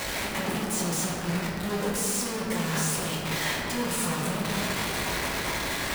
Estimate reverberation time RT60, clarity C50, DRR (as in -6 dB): 2.6 s, -0.5 dB, -5.0 dB